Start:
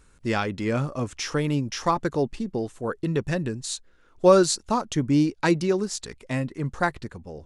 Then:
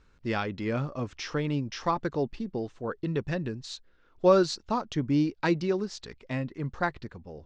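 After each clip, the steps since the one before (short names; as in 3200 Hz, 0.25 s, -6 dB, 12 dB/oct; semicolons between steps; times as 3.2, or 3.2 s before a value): LPF 5300 Hz 24 dB/oct; gain -4.5 dB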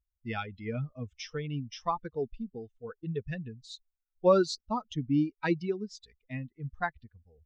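per-bin expansion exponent 2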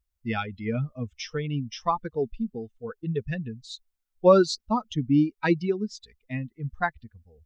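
bell 220 Hz +3.5 dB 0.3 oct; gain +5.5 dB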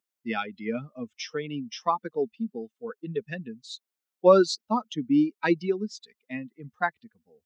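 HPF 200 Hz 24 dB/oct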